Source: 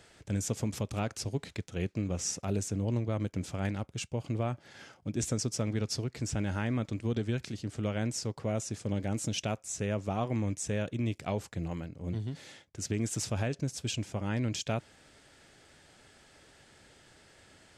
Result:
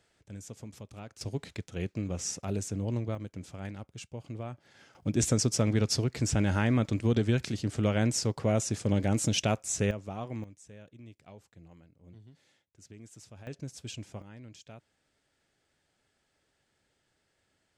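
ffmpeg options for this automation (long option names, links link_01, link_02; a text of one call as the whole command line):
ffmpeg -i in.wav -af "asetnsamples=nb_out_samples=441:pad=0,asendcmd='1.21 volume volume -1dB;3.15 volume volume -7dB;4.95 volume volume 5.5dB;9.91 volume volume -6dB;10.44 volume volume -18dB;13.47 volume volume -7dB;14.22 volume volume -17dB',volume=-12dB" out.wav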